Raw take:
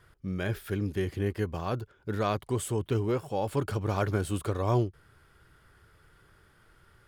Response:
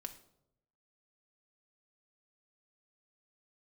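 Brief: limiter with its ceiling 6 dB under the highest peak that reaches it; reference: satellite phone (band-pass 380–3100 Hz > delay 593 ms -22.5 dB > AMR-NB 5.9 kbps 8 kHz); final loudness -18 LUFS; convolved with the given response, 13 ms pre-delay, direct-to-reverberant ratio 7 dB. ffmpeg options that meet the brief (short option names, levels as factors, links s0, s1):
-filter_complex "[0:a]alimiter=limit=0.0891:level=0:latency=1,asplit=2[s0][s1];[1:a]atrim=start_sample=2205,adelay=13[s2];[s1][s2]afir=irnorm=-1:irlink=0,volume=0.668[s3];[s0][s3]amix=inputs=2:normalize=0,highpass=380,lowpass=3100,aecho=1:1:593:0.075,volume=10" -ar 8000 -c:a libopencore_amrnb -b:a 5900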